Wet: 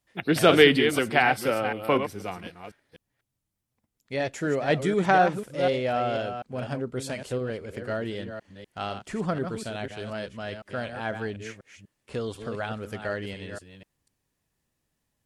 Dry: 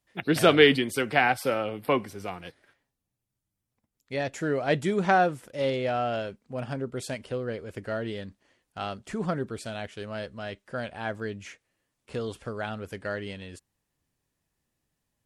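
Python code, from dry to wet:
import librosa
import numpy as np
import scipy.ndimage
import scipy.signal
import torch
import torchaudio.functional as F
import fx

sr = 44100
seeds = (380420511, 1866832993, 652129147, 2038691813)

y = fx.reverse_delay(x, sr, ms=247, wet_db=-8)
y = y * librosa.db_to_amplitude(1.0)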